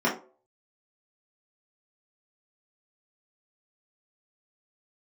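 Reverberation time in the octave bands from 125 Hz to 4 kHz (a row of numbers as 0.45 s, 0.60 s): 0.35 s, 0.35 s, 0.50 s, 0.35 s, 0.25 s, 0.20 s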